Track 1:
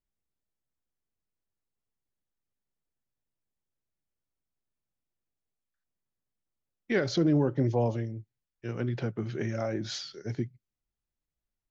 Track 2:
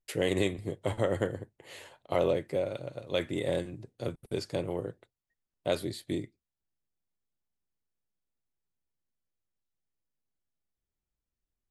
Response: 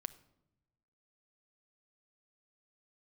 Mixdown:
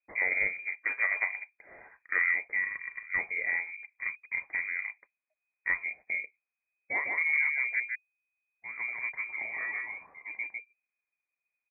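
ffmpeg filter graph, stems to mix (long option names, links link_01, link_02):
-filter_complex "[0:a]highpass=140,volume=-4.5dB,asplit=3[link_01][link_02][link_03];[link_01]atrim=end=7.8,asetpts=PTS-STARTPTS,afade=type=out:start_time=7.796:duration=0.004:curve=hsin[link_04];[link_02]atrim=start=7.8:end=8.49,asetpts=PTS-STARTPTS,volume=0[link_05];[link_03]atrim=start=8.49,asetpts=PTS-STARTPTS,afade=type=in:duration=0.004:curve=hsin[link_06];[link_04][link_05][link_06]concat=n=3:v=0:a=1,asplit=2[link_07][link_08];[link_08]volume=-3dB[link_09];[1:a]volume=-0.5dB[link_10];[link_09]aecho=0:1:153:1[link_11];[link_07][link_10][link_11]amix=inputs=3:normalize=0,lowpass=frequency=2100:width_type=q:width=0.5098,lowpass=frequency=2100:width_type=q:width=0.6013,lowpass=frequency=2100:width_type=q:width=0.9,lowpass=frequency=2100:width_type=q:width=2.563,afreqshift=-2500"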